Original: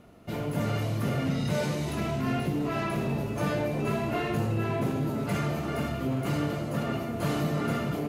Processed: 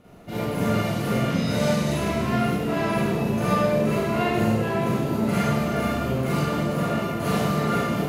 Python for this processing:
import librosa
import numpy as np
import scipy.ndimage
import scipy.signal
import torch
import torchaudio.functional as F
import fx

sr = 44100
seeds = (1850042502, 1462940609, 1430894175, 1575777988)

y = fx.rev_schroeder(x, sr, rt60_s=0.84, comb_ms=32, drr_db=-7.0)
y = y * librosa.db_to_amplitude(-1.0)